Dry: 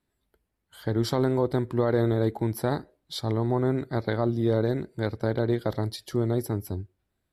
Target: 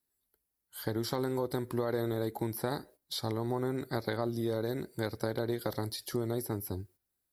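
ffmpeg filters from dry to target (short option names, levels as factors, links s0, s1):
-filter_complex "[0:a]agate=range=0.316:threshold=0.00316:ratio=16:detection=peak,aexciter=amount=2.3:drive=5.7:freq=4400,acompressor=threshold=0.0501:ratio=6,highshelf=f=8800:g=8.5,acrossover=split=3300[s0][s1];[s1]acompressor=threshold=0.0112:ratio=4:attack=1:release=60[s2];[s0][s2]amix=inputs=2:normalize=0,lowshelf=f=230:g=-6.5,bandreject=f=650:w=16"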